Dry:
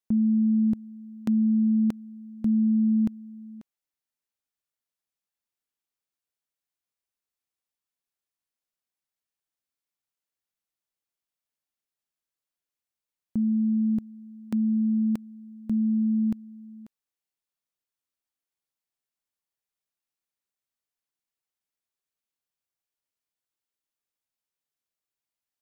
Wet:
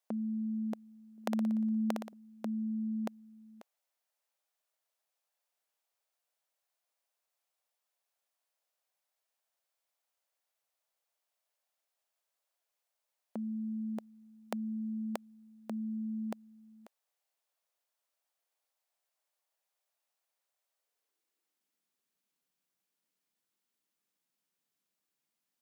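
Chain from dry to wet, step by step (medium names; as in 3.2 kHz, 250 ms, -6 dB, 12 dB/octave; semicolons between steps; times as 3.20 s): 1.12–2.13 s: flutter echo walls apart 10.1 m, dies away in 0.69 s; high-pass sweep 620 Hz -> 190 Hz, 20.68–21.90 s; trim +3.5 dB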